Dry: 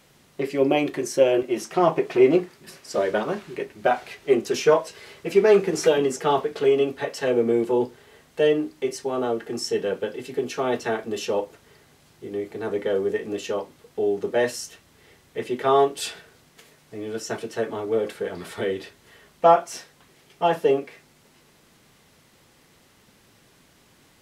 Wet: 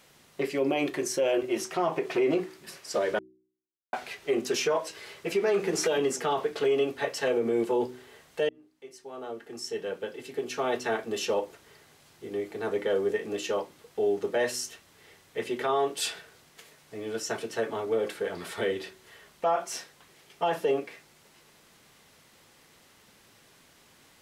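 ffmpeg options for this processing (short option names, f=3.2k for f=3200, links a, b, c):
-filter_complex "[0:a]asplit=4[a][b][c][d];[a]atrim=end=3.19,asetpts=PTS-STARTPTS,afade=t=out:st=3.186:d=0.004:c=hsin[e];[b]atrim=start=3.19:end=3.93,asetpts=PTS-STARTPTS,volume=0[f];[c]atrim=start=3.93:end=8.49,asetpts=PTS-STARTPTS,afade=t=in:d=0.004:c=hsin,afade=t=out:st=4.556:d=0.004:c=hsin[g];[d]atrim=start=8.49,asetpts=PTS-STARTPTS,afade=t=in:d=2.71[h];[e][f][g][h]concat=n=4:v=0:a=1,lowshelf=f=390:g=-6,bandreject=f=62.68:t=h:w=4,bandreject=f=125.36:t=h:w=4,bandreject=f=188.04:t=h:w=4,bandreject=f=250.72:t=h:w=4,bandreject=f=313.4:t=h:w=4,bandreject=f=376.08:t=h:w=4,alimiter=limit=-17.5dB:level=0:latency=1:release=67"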